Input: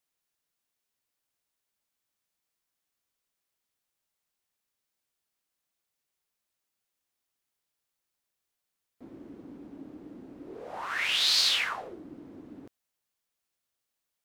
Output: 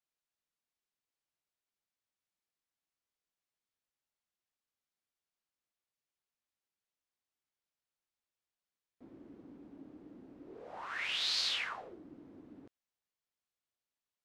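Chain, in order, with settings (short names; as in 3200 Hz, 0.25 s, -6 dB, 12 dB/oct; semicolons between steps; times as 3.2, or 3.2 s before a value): air absorption 52 m; gain -7.5 dB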